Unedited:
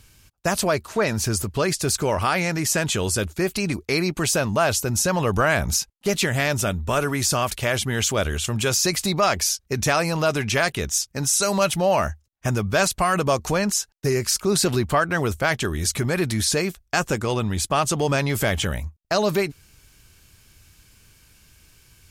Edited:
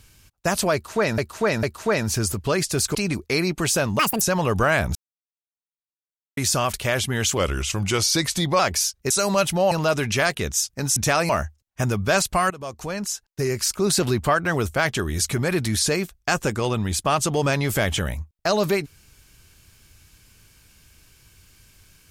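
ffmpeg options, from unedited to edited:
-filter_complex "[0:a]asplit=15[a][b][c][d][e][f][g][h][i][j][k][l][m][n][o];[a]atrim=end=1.182[p];[b]atrim=start=0.728:end=1.182[q];[c]atrim=start=0.728:end=2.052[r];[d]atrim=start=3.538:end=4.584[s];[e]atrim=start=4.58:end=4.99,asetpts=PTS-STARTPTS,asetrate=81585,aresample=44100[t];[f]atrim=start=4.986:end=5.73,asetpts=PTS-STARTPTS,afade=t=out:st=0.74:d=0.004:c=hsin[u];[g]atrim=start=5.73:end=7.15,asetpts=PTS-STARTPTS,volume=0[v];[h]atrim=start=7.15:end=8.154,asetpts=PTS-STARTPTS,afade=t=in:d=0.004:c=hsin[w];[i]atrim=start=8.15:end=9.25,asetpts=PTS-STARTPTS,asetrate=39690,aresample=44100[x];[j]atrim=start=9.246:end=9.762[y];[k]atrim=start=11.338:end=11.952[z];[l]atrim=start=10.088:end=11.342[aa];[m]atrim=start=9.758:end=10.092[ab];[n]atrim=start=11.948:end=13.16,asetpts=PTS-STARTPTS,afade=t=out:st=1.208:d=0.004:c=hsin:silence=0.11885[ac];[o]atrim=start=13.16,asetpts=PTS-STARTPTS,afade=t=in:d=1.8:c=qsin:silence=0.11885[ad];[p][q]acrossfade=d=0.004:c1=hsin:c2=hsin[ae];[ae][r]acrossfade=d=0.004:c1=hsin:c2=hsin[af];[af][s]acrossfade=d=0.004:c1=hsin:c2=hsin[ag];[ag][t]acrossfade=d=0.004:c1=hsin:c2=hsin[ah];[u][v][w]concat=n=3:v=0:a=1[ai];[ah][ai]acrossfade=d=0.004:c1=hsin:c2=hsin[aj];[aj][x]acrossfade=d=0.004:c1=hsin:c2=hsin[ak];[ak][y]acrossfade=d=0.004:c1=hsin:c2=hsin[al];[al][z]acrossfade=d=0.004:c1=hsin:c2=hsin[am];[am][aa]acrossfade=d=0.004:c1=hsin:c2=hsin[an];[an][ab]acrossfade=d=0.004:c1=hsin:c2=hsin[ao];[ac][ad]concat=n=2:v=0:a=1[ap];[ao][ap]acrossfade=d=0.004:c1=hsin:c2=hsin"

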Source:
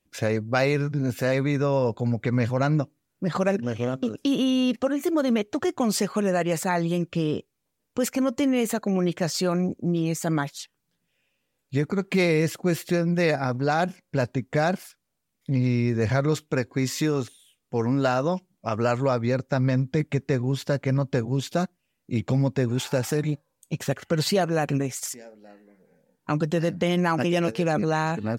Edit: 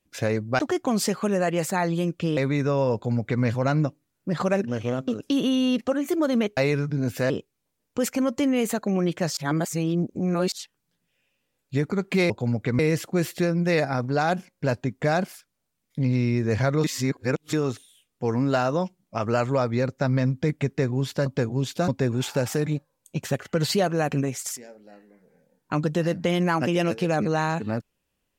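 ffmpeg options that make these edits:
-filter_complex "[0:a]asplit=13[a][b][c][d][e][f][g][h][i][j][k][l][m];[a]atrim=end=0.592[n];[b]atrim=start=5.518:end=7.302[o];[c]atrim=start=1.318:end=5.522[p];[d]atrim=start=0.588:end=1.322[q];[e]atrim=start=7.298:end=9.372[r];[f]atrim=start=9.368:end=10.522,asetpts=PTS-STARTPTS,areverse[s];[g]atrim=start=10.518:end=12.302[t];[h]atrim=start=1.888:end=2.382[u];[i]atrim=start=12.298:end=16.352[v];[j]atrim=start=16.348:end=17.042,asetpts=PTS-STARTPTS,areverse[w];[k]atrim=start=17.038:end=20.772[x];[l]atrim=start=21.018:end=21.642[y];[m]atrim=start=22.448[z];[n][o]acrossfade=d=0.004:c1=hsin:c2=hsin[aa];[aa][p]acrossfade=d=0.004:c1=hsin:c2=hsin[ab];[ab][q]acrossfade=d=0.004:c1=hsin:c2=hsin[ac];[ac][r]acrossfade=d=0.004:c1=hsin:c2=hsin[ad];[ad][s]acrossfade=d=0.004:c1=hsin:c2=hsin[ae];[ae][t]acrossfade=d=0.004:c1=hsin:c2=hsin[af];[af][u]acrossfade=d=0.004:c1=hsin:c2=hsin[ag];[ag][v]acrossfade=d=0.004:c1=hsin:c2=hsin[ah];[ah][w]acrossfade=d=0.004:c1=hsin:c2=hsin[ai];[ai][x]acrossfade=d=0.004:c1=hsin:c2=hsin[aj];[aj][y]acrossfade=d=0.004:c1=hsin:c2=hsin[ak];[ak][z]acrossfade=d=0.004:c1=hsin:c2=hsin"

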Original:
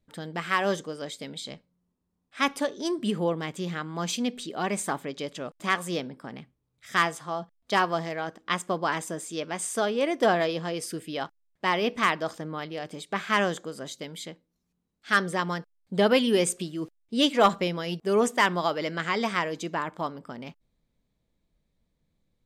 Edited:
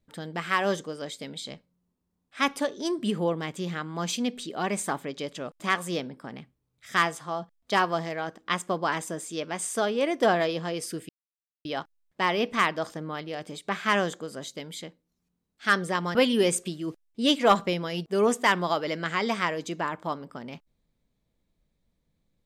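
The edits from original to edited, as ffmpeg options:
-filter_complex "[0:a]asplit=3[a][b][c];[a]atrim=end=11.09,asetpts=PTS-STARTPTS,afade=t=out:st=11.086:d=0.004:c=hsin,apad=pad_dur=0.56[d];[b]atrim=start=11.09:end=15.592,asetpts=PTS-STARTPTS,afade=t=in:d=0.004:c=hsin[e];[c]atrim=start=16.088[f];[d][e]concat=n=2:v=0:a=1[g];[g][f]acrossfade=d=0.004:c1=hsin:c2=hsin"

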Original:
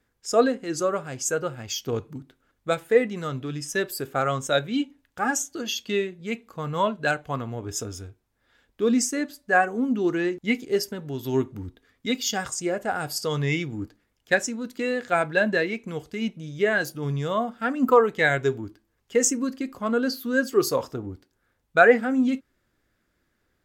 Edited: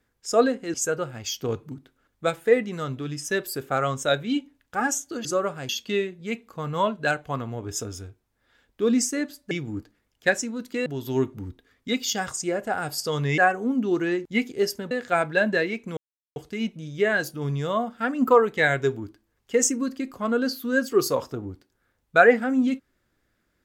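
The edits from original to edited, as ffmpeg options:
-filter_complex "[0:a]asplit=9[a][b][c][d][e][f][g][h][i];[a]atrim=end=0.742[j];[b]atrim=start=1.178:end=5.692[k];[c]atrim=start=0.738:end=1.182[l];[d]atrim=start=5.688:end=9.512[m];[e]atrim=start=13.558:end=14.912[n];[f]atrim=start=11.038:end=13.562[o];[g]atrim=start=9.508:end=11.042[p];[h]atrim=start=14.908:end=15.97,asetpts=PTS-STARTPTS,afade=t=out:st=1.058:d=0.004:c=hsin,apad=pad_dur=0.39[q];[i]atrim=start=15.97,asetpts=PTS-STARTPTS,afade=t=in:d=0.004:c=hsin[r];[j][k]acrossfade=d=0.004:c1=hsin:c2=hsin[s];[s][l]acrossfade=d=0.004:c1=hsin:c2=hsin[t];[t][m]acrossfade=d=0.004:c1=hsin:c2=hsin[u];[u][n]acrossfade=d=0.004:c1=hsin:c2=hsin[v];[v][o]acrossfade=d=0.004:c1=hsin:c2=hsin[w];[w][p]acrossfade=d=0.004:c1=hsin:c2=hsin[x];[q][r]concat=n=2:v=0:a=1[y];[x][y]acrossfade=d=0.004:c1=hsin:c2=hsin"

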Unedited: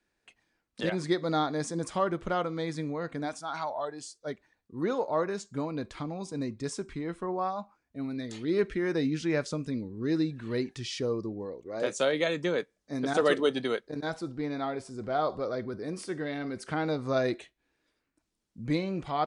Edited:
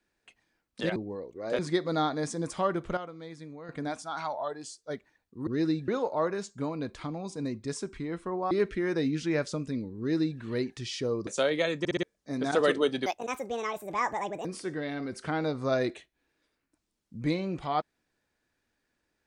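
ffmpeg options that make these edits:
-filter_complex "[0:a]asplit=15[a][b][c][d][e][f][g][h][i][j][k][l][m][n][o];[a]atrim=end=0.962[p];[b]atrim=start=11.258:end=11.892[q];[c]atrim=start=0.958:end=2.342[r];[d]atrim=start=2.338:end=3.062,asetpts=PTS-STARTPTS,volume=-10.5dB[s];[e]atrim=start=3.058:end=4.842[t];[f]atrim=start=9.978:end=10.392[u];[g]atrim=start=4.838:end=7.472[v];[h]atrim=start=8.498:end=11.262[w];[i]atrim=start=11.888:end=12.472[x];[j]atrim=start=12.408:end=12.472[y];[k]atrim=start=12.408:end=12.472[z];[l]atrim=start=12.408:end=12.472[aa];[m]atrim=start=12.648:end=13.684[ab];[n]atrim=start=13.68:end=15.89,asetpts=PTS-STARTPTS,asetrate=70119,aresample=44100,atrim=end_sample=61296,asetpts=PTS-STARTPTS[ac];[o]atrim=start=15.886[ad];[p][q]acrossfade=d=0.004:c1=hsin:c2=hsin[ae];[ae][r]acrossfade=d=0.004:c1=hsin:c2=hsin[af];[af][s]acrossfade=d=0.004:c1=hsin:c2=hsin[ag];[ag][t]acrossfade=d=0.004:c1=hsin:c2=hsin[ah];[ah][u]acrossfade=d=0.004:c1=hsin:c2=hsin[ai];[ai][v]acrossfade=d=0.004:c1=hsin:c2=hsin[aj];[aj][w]acrossfade=d=0.004:c1=hsin:c2=hsin[ak];[ak][x]acrossfade=d=0.004:c1=hsin:c2=hsin[al];[al][y]acrossfade=d=0.004:c1=hsin:c2=hsin[am];[am][z]acrossfade=d=0.004:c1=hsin:c2=hsin[an];[an][aa]acrossfade=d=0.004:c1=hsin:c2=hsin[ao];[ao][ab]acrossfade=d=0.004:c1=hsin:c2=hsin[ap];[ap][ac]acrossfade=d=0.004:c1=hsin:c2=hsin[aq];[aq][ad]acrossfade=d=0.004:c1=hsin:c2=hsin"

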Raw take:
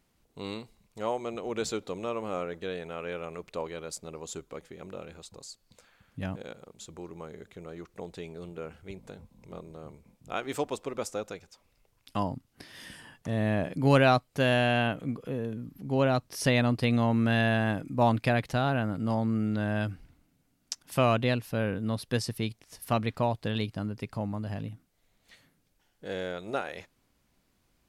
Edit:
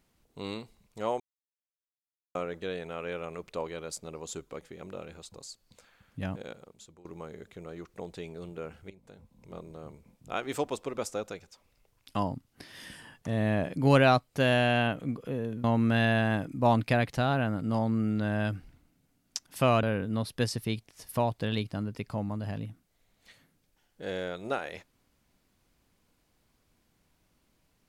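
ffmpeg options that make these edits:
-filter_complex "[0:a]asplit=8[a][b][c][d][e][f][g][h];[a]atrim=end=1.2,asetpts=PTS-STARTPTS,afade=t=out:st=1.196:d=0.004:c=hsin[i];[b]atrim=start=1.2:end=2.35,asetpts=PTS-STARTPTS,volume=0[j];[c]atrim=start=2.35:end=7.05,asetpts=PTS-STARTPTS,afade=t=in:d=0.004:c=hsin,afade=t=out:st=4.16:d=0.54:silence=0.11885[k];[d]atrim=start=7.05:end=8.9,asetpts=PTS-STARTPTS,afade=t=in:d=0.004:c=hsin:silence=0.11885,afade=t=out:st=1.846:d=0.004:c=hsin:silence=0.16788[l];[e]atrim=start=8.9:end=15.642,asetpts=PTS-STARTPTS,afade=t=in:d=0.72:silence=0.16788[m];[f]atrim=start=16.998:end=21.192[n];[g]atrim=start=21.558:end=22.902[o];[h]atrim=start=23.198[p];[i][j][k][l][m]concat=n=5:v=0:a=1[q];[q][n]acrossfade=d=0.004:c1=hsin:c2=hsin[r];[r][o]acrossfade=d=0.004:c1=hsin:c2=hsin[s];[s][p]acrossfade=d=0.004:c1=hsin:c2=hsin"

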